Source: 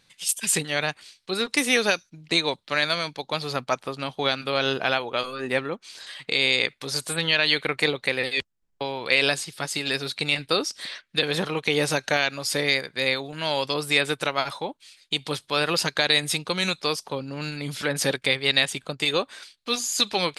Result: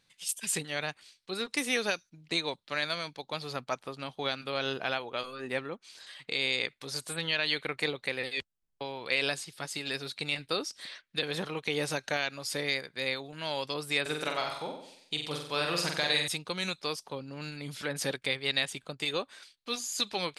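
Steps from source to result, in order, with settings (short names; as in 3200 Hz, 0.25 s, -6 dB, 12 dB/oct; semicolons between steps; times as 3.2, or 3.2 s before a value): 14.01–16.28 flutter echo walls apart 7.9 m, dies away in 0.66 s; gain -8.5 dB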